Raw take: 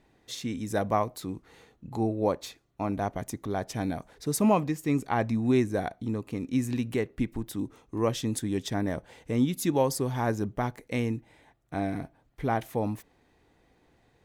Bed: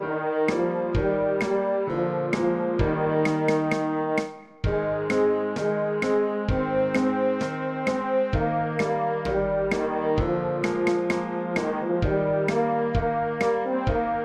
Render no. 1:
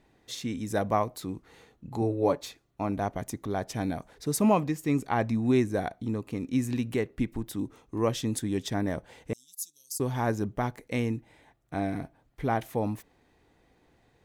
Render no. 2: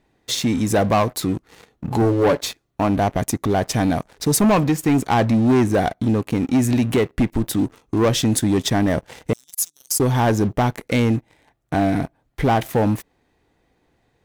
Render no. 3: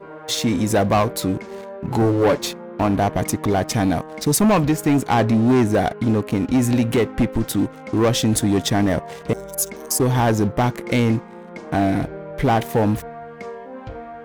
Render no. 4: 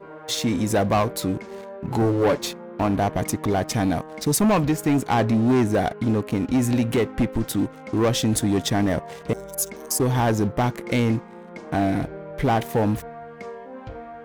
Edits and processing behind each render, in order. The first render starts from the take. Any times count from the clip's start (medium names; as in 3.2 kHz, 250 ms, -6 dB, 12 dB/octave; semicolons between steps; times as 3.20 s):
2.01–2.42 s: comb 7 ms, depth 58%; 9.33–10.00 s: inverse Chebyshev high-pass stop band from 2.2 kHz, stop band 50 dB
waveshaping leveller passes 3; in parallel at 0 dB: compression, threshold -29 dBFS, peak gain reduction 13 dB
add bed -10 dB
trim -3 dB